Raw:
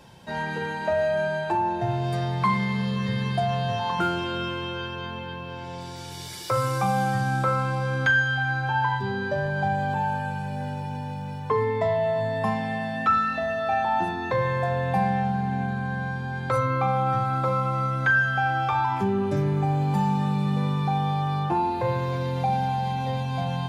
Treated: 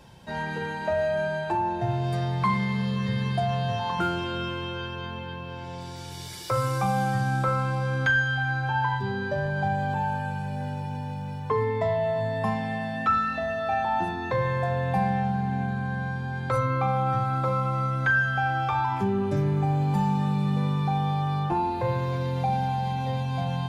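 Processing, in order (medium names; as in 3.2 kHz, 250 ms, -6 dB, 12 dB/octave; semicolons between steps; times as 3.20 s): bass shelf 76 Hz +8.5 dB; trim -2 dB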